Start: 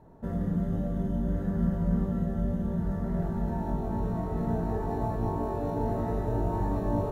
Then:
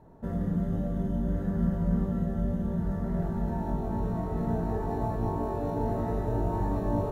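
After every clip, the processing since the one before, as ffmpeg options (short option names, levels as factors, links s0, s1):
-af anull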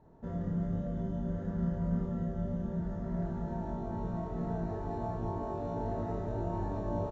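-filter_complex "[0:a]asplit=2[s0][s1];[s1]adelay=29,volume=0.562[s2];[s0][s2]amix=inputs=2:normalize=0,aresample=16000,aresample=44100,volume=0.473"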